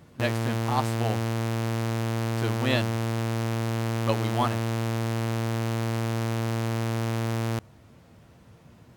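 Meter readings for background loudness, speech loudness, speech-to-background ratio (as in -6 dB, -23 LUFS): -28.5 LUFS, -31.5 LUFS, -3.0 dB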